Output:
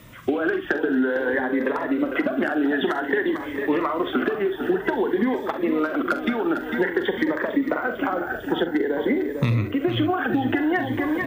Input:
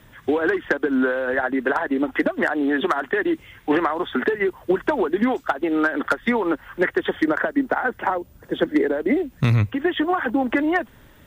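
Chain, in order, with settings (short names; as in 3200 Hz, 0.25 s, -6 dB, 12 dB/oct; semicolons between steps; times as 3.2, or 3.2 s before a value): on a send: feedback echo 0.45 s, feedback 57%, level -11 dB; on the sum: vocal rider 2 s; low shelf 66 Hz -9 dB; early reflections 43 ms -10.5 dB, 66 ms -14.5 dB; dynamic EQ 7600 Hz, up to -6 dB, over -50 dBFS, Q 1.2; compressor, threshold -22 dBFS, peak gain reduction 9 dB; cascading phaser rising 0.52 Hz; gain +4.5 dB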